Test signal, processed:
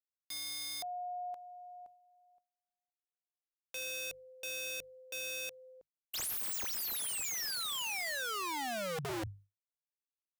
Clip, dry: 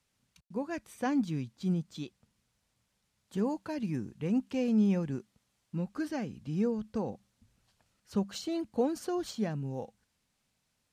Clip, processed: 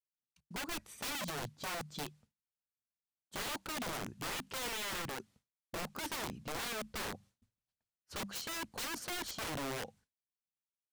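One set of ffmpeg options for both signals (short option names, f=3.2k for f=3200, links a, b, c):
-af "bandreject=f=50:t=h:w=6,bandreject=f=100:t=h:w=6,bandreject=f=150:t=h:w=6,agate=range=-33dB:threshold=-55dB:ratio=3:detection=peak,aeval=exprs='(mod(53.1*val(0)+1,2)-1)/53.1':c=same"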